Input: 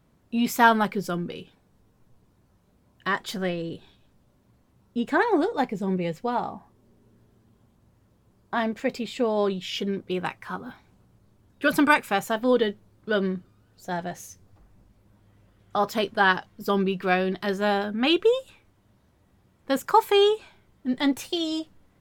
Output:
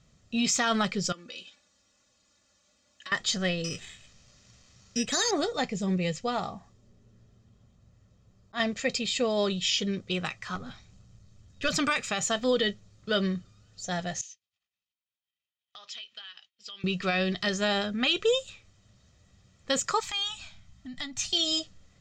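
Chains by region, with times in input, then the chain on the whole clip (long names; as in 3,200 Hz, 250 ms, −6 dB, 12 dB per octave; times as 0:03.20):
0:01.12–0:03.12: high-pass filter 770 Hz 6 dB per octave + comb filter 3.5 ms, depth 84% + downward compressor, threshold −41 dBFS
0:03.64–0:05.31: bad sample-rate conversion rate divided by 8×, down none, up hold + one half of a high-frequency compander encoder only
0:06.49–0:08.60: volume swells 114 ms + one half of a high-frequency compander decoder only
0:10.55–0:11.69: gain on one half-wave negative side −3 dB + low-shelf EQ 170 Hz +6 dB
0:14.21–0:16.84: downward expander −46 dBFS + resonant band-pass 3,000 Hz, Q 2.7 + downward compressor 8 to 1, threshold −45 dBFS
0:20.00–0:21.33: Chebyshev band-stop filter 290–680 Hz + low-shelf EQ 91 Hz +9 dB + downward compressor, threshold −34 dBFS
whole clip: drawn EQ curve 180 Hz 0 dB, 820 Hz −6 dB, 7,100 Hz +13 dB, 11,000 Hz −22 dB; brickwall limiter −16.5 dBFS; comb filter 1.6 ms, depth 48%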